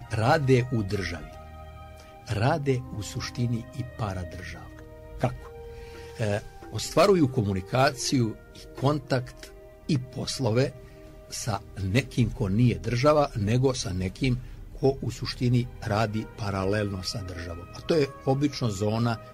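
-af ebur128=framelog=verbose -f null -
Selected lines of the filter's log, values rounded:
Integrated loudness:
  I:         -27.0 LUFS
  Threshold: -37.8 LUFS
Loudness range:
  LRA:         6.0 LU
  Threshold: -48.0 LUFS
  LRA low:   -31.8 LUFS
  LRA high:  -25.8 LUFS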